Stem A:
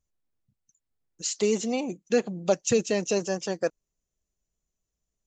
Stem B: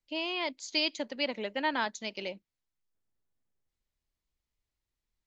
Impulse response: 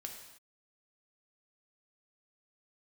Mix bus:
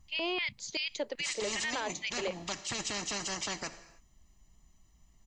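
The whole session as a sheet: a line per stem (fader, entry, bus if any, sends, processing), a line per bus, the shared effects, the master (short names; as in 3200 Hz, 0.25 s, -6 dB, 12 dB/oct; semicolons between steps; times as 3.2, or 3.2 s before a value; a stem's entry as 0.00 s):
-6.5 dB, 0.00 s, send -4 dB, high shelf 6000 Hz -11.5 dB; comb 1 ms, depth 94%; spectral compressor 4:1
+0.5 dB, 0.00 s, no send, LFO high-pass square 2.6 Hz 420–2100 Hz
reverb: on, pre-delay 3 ms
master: limiter -24.5 dBFS, peak gain reduction 11.5 dB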